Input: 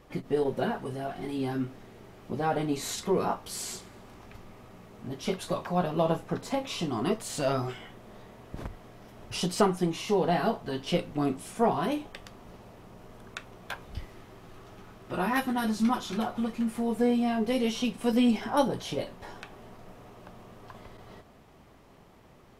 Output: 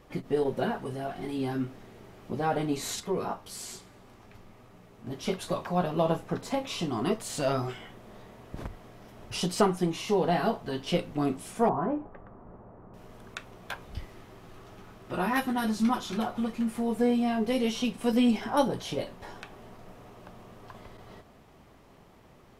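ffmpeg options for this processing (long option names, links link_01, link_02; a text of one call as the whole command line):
ffmpeg -i in.wav -filter_complex "[0:a]asettb=1/sr,asplit=3[link_01][link_02][link_03];[link_01]atrim=end=3.004[link_04];[link_02]atrim=start=3:end=5.07,asetpts=PTS-STARTPTS,afade=type=in:duration=0.004:curve=qsin,afade=type=out:start_time=2.066:duration=0.004:curve=qsin,flanger=delay=6.6:depth=3.3:regen=-51:speed=1.1:shape=sinusoidal[link_05];[link_03]atrim=start=5.066[link_06];[link_04][link_05]acrossfade=duration=0.004:curve1=hsin:curve2=qsin[link_07];[link_07][link_06]acrossfade=duration=0.004:curve1=qsin:curve2=hsin,asettb=1/sr,asplit=3[link_08][link_09][link_10];[link_08]atrim=end=11.694[link_11];[link_09]atrim=start=11.69:end=12.94,asetpts=PTS-STARTPTS,afade=type=in:duration=0.004:curve=qsin,afade=type=out:start_time=1.246:duration=0.004:curve=qsin,lowpass=frequency=1400:width=0.5412,lowpass=frequency=1400:width=1.3066[link_12];[link_10]atrim=start=12.936[link_13];[link_11][link_12]acrossfade=duration=0.004:curve1=hsin:curve2=qsin[link_14];[link_14][link_13]acrossfade=duration=0.004:curve1=qsin:curve2=hsin" out.wav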